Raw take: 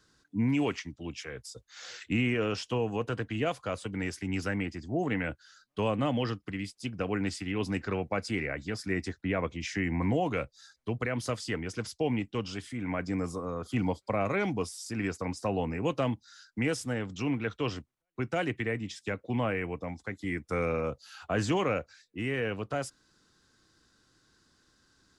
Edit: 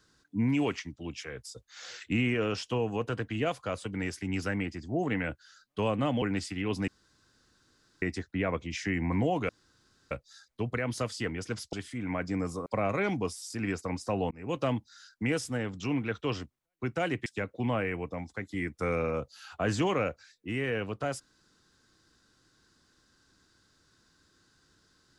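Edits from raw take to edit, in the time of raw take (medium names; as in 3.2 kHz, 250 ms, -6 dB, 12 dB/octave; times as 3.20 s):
6.22–7.12 s: delete
7.78–8.92 s: room tone
10.39 s: insert room tone 0.62 s
12.01–12.52 s: delete
13.45–14.02 s: delete
15.67–15.97 s: fade in
18.62–18.96 s: delete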